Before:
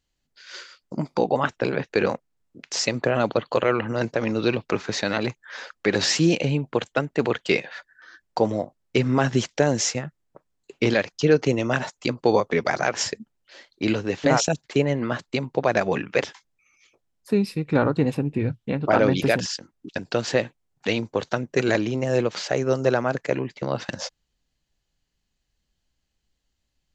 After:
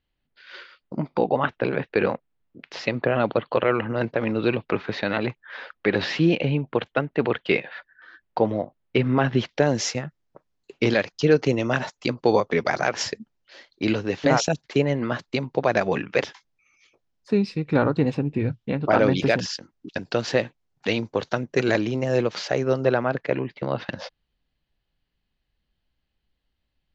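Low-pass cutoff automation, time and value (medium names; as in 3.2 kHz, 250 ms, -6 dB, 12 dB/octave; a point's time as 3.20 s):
low-pass 24 dB/octave
9.32 s 3.6 kHz
9.87 s 6.1 kHz
22.50 s 6.1 kHz
22.90 s 4 kHz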